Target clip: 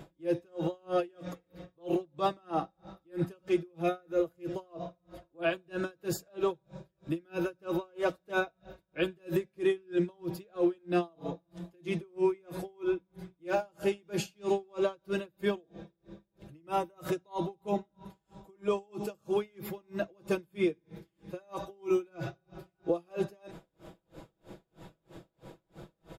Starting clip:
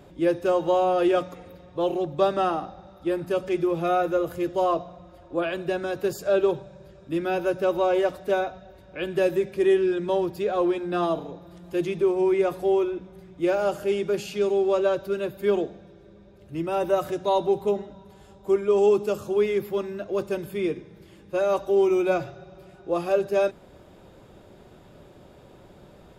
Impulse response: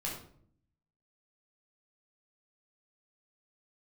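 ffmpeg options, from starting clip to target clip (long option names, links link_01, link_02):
-af "aecho=1:1:6.1:0.61,alimiter=limit=-20.5dB:level=0:latency=1:release=96,aeval=exprs='val(0)*pow(10,-37*(0.5-0.5*cos(2*PI*3.1*n/s))/20)':channel_layout=same,volume=2.5dB"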